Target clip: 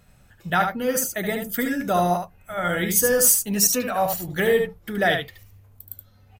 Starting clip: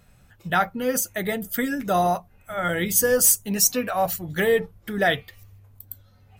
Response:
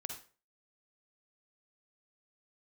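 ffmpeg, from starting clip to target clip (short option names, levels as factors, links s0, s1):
-af "aecho=1:1:74:0.501"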